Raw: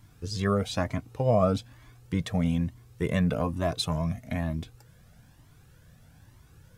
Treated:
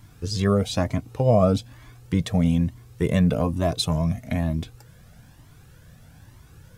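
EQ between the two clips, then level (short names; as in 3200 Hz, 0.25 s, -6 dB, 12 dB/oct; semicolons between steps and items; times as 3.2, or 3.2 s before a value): dynamic EQ 1500 Hz, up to -6 dB, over -44 dBFS, Q 0.8; +6.0 dB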